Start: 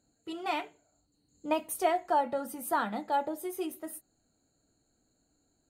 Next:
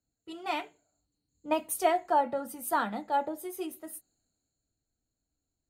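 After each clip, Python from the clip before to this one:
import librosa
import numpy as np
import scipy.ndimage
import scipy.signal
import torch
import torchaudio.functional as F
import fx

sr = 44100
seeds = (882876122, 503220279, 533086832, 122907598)

y = fx.band_widen(x, sr, depth_pct=40)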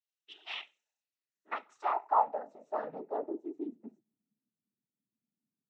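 y = fx.noise_vocoder(x, sr, seeds[0], bands=12)
y = fx.filter_sweep_bandpass(y, sr, from_hz=3000.0, to_hz=220.0, start_s=0.8, end_s=3.83, q=3.9)
y = y * librosa.db_to_amplitude(4.0)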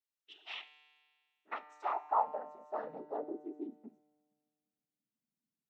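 y = fx.comb_fb(x, sr, f0_hz=150.0, decay_s=1.8, harmonics='all', damping=0.0, mix_pct=70)
y = y * librosa.db_to_amplitude(6.0)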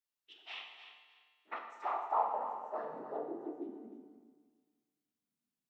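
y = fx.echo_feedback(x, sr, ms=300, feedback_pct=20, wet_db=-11.5)
y = fx.rev_plate(y, sr, seeds[1], rt60_s=1.3, hf_ratio=0.8, predelay_ms=0, drr_db=3.0)
y = y * librosa.db_to_amplitude(-2.0)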